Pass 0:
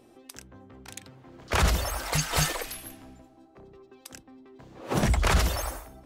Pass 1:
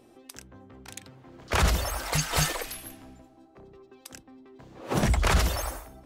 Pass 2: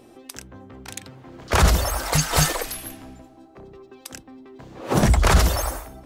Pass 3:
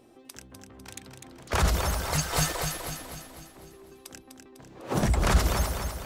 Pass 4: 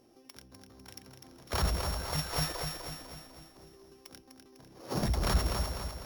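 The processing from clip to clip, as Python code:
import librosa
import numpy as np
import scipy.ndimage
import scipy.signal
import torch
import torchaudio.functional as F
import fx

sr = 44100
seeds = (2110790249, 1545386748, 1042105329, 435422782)

y1 = x
y2 = fx.dynamic_eq(y1, sr, hz=2600.0, q=1.1, threshold_db=-44.0, ratio=4.0, max_db=-4)
y2 = y2 * 10.0 ** (7.0 / 20.0)
y3 = fx.echo_feedback(y2, sr, ms=250, feedback_pct=51, wet_db=-6)
y3 = y3 * 10.0 ** (-7.5 / 20.0)
y4 = np.r_[np.sort(y3[:len(y3) // 8 * 8].reshape(-1, 8), axis=1).ravel(), y3[len(y3) // 8 * 8:]]
y4 = y4 * 10.0 ** (-6.0 / 20.0)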